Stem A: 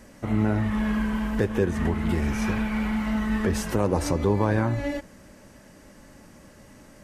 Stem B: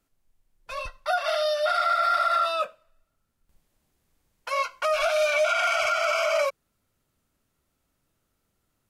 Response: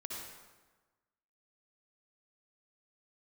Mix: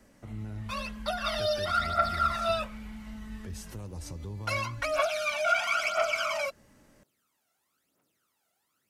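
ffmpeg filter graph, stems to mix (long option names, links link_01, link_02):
-filter_complex "[0:a]acrossover=split=150|3000[link_01][link_02][link_03];[link_02]acompressor=threshold=-42dB:ratio=2.5[link_04];[link_01][link_04][link_03]amix=inputs=3:normalize=0,volume=-10.5dB[link_05];[1:a]highpass=310,acompressor=threshold=-26dB:ratio=6,aphaser=in_gain=1:out_gain=1:delay=1.5:decay=0.71:speed=1:type=triangular,volume=-1.5dB[link_06];[link_05][link_06]amix=inputs=2:normalize=0"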